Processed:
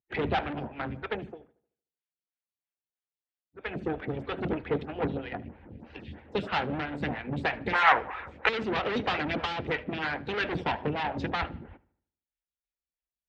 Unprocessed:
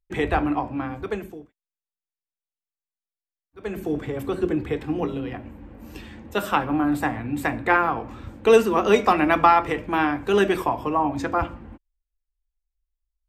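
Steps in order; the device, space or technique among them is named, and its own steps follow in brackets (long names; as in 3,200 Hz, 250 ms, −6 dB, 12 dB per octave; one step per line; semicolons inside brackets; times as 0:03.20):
vibe pedal into a guitar amplifier (phaser with staggered stages 3.1 Hz; tube saturation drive 28 dB, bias 0.75; loudspeaker in its box 76–3,800 Hz, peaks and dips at 78 Hz +10 dB, 140 Hz +6 dB, 330 Hz −5 dB, 640 Hz −3 dB, 1,100 Hz −10 dB)
harmonic and percussive parts rebalanced harmonic −12 dB
0:07.73–0:08.49: graphic EQ with 10 bands 125 Hz −11 dB, 250 Hz −9 dB, 500 Hz +4 dB, 1,000 Hz +10 dB, 2,000 Hz +12 dB, 4,000 Hz −3 dB, 8,000 Hz +11 dB
feedback echo with a low-pass in the loop 76 ms, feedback 45%, low-pass 3,400 Hz, level −20 dB
level +9 dB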